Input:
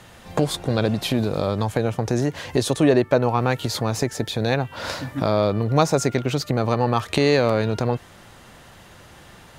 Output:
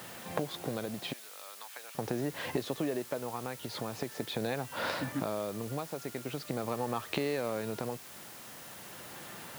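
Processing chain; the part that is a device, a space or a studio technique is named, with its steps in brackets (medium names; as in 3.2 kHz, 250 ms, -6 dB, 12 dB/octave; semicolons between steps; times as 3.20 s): medium wave at night (band-pass 160–3700 Hz; compression, threshold -30 dBFS, peak gain reduction 17 dB; tremolo 0.42 Hz, depth 44%; whistle 10 kHz -61 dBFS; white noise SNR 13 dB); 1.13–1.95 s: high-pass 1.4 kHz 12 dB/octave; high-pass 61 Hz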